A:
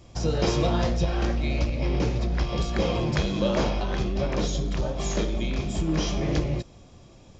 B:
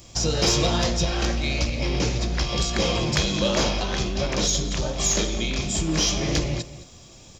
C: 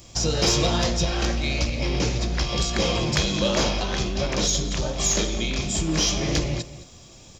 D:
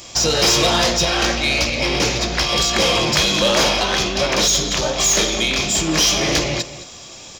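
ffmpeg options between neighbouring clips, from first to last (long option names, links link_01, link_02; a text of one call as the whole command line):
ffmpeg -i in.wav -filter_complex "[0:a]asplit=2[link_01][link_02];[link_02]adelay=215.7,volume=-15dB,highshelf=frequency=4000:gain=-4.85[link_03];[link_01][link_03]amix=inputs=2:normalize=0,crystalizer=i=5:c=0,acontrast=84,volume=-6.5dB" out.wav
ffmpeg -i in.wav -af anull out.wav
ffmpeg -i in.wav -filter_complex "[0:a]asplit=2[link_01][link_02];[link_02]highpass=frequency=720:poles=1,volume=16dB,asoftclip=type=tanh:threshold=-9.5dB[link_03];[link_01][link_03]amix=inputs=2:normalize=0,lowpass=frequency=7400:poles=1,volume=-6dB,volume=2.5dB" out.wav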